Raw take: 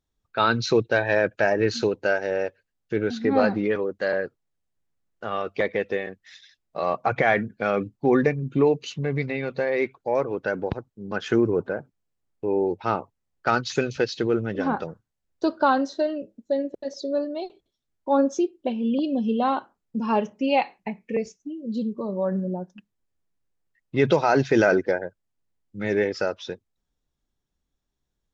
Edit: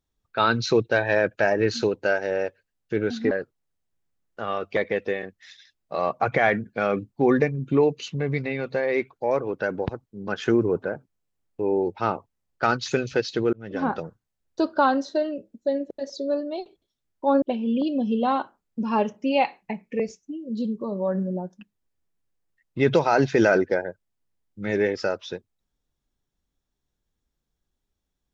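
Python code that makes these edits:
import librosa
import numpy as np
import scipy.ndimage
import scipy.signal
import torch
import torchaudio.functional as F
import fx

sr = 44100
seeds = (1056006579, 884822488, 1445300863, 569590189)

y = fx.edit(x, sr, fx.cut(start_s=3.31, length_s=0.84),
    fx.fade_in_span(start_s=14.37, length_s=0.33),
    fx.cut(start_s=18.26, length_s=0.33), tone=tone)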